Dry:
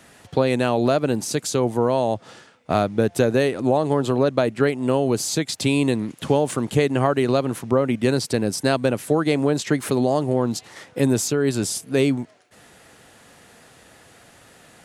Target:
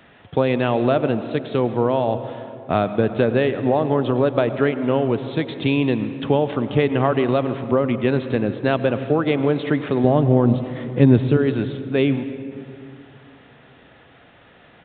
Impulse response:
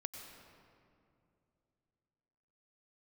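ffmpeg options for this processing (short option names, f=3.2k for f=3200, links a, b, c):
-filter_complex "[0:a]asettb=1/sr,asplit=3[a][b][c];[a]atrim=end=10.044[d];[b]atrim=start=10.04:end=11.37,asetpts=PTS-STARTPTS,afade=t=in:d=0.004:c=qsin,afade=t=out:st=1.326:d=0.004:c=qsin,lowshelf=f=250:g=11[e];[c]atrim=start=11.366[f];[d][e]acrossfade=d=0.004:c1=hsin:c2=qsin[g];[g][f]acrossfade=d=0.004:c1=qsin:c2=hsin,asplit=2[h][i];[1:a]atrim=start_sample=2205[j];[i][j]afir=irnorm=-1:irlink=0,volume=1.5dB[k];[h][k]amix=inputs=2:normalize=0,aresample=8000,aresample=44100,volume=-4.5dB"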